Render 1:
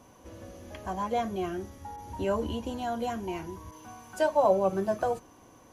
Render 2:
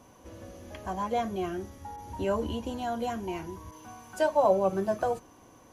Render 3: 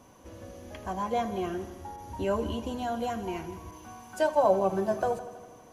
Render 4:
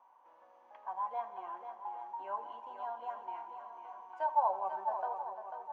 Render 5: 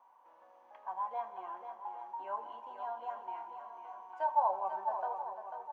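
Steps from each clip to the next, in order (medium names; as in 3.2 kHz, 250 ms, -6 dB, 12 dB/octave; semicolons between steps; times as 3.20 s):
no audible change
multi-head delay 81 ms, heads first and second, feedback 57%, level -17.5 dB
ladder band-pass 960 Hz, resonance 75%; shuffle delay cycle 823 ms, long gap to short 1.5:1, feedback 36%, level -8.5 dB
doubling 27 ms -14 dB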